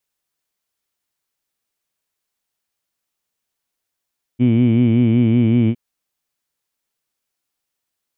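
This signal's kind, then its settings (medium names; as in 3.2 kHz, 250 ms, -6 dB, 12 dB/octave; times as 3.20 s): formant-synthesis vowel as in heed, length 1.36 s, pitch 119 Hz, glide -0.5 st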